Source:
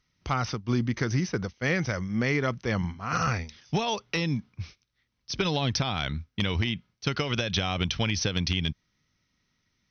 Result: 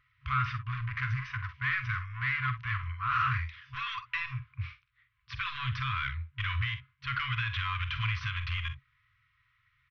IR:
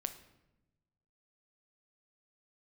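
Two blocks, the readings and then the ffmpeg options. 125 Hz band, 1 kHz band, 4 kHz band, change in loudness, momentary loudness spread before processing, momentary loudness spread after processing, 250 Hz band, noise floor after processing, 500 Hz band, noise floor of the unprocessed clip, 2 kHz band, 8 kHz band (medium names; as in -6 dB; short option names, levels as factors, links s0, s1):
-4.5 dB, -1.0 dB, -8.5 dB, -4.5 dB, 6 LU, 8 LU, under -20 dB, -73 dBFS, under -40 dB, -77 dBFS, 0.0 dB, no reading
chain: -af "aresample=16000,asoftclip=type=tanh:threshold=0.0282,aresample=44100,lowpass=f=2600:w=0.5412,lowpass=f=2600:w=1.3066,lowshelf=f=88:g=-10.5,aecho=1:1:46|61:0.266|0.178,afftfilt=real='re*(1-between(b*sr/4096,130,1000))':imag='im*(1-between(b*sr/4096,130,1000))':win_size=4096:overlap=0.75,volume=2.51"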